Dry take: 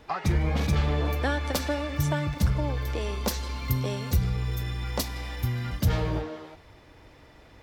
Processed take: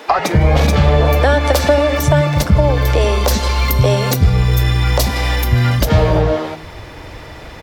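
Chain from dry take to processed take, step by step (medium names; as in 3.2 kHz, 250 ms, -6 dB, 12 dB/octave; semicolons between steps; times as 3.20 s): dynamic bell 600 Hz, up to +7 dB, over -46 dBFS, Q 1.7; compression 2.5:1, threshold -31 dBFS, peak gain reduction 9 dB; bands offset in time highs, lows 90 ms, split 270 Hz; loudness maximiser +21 dB; trim -1 dB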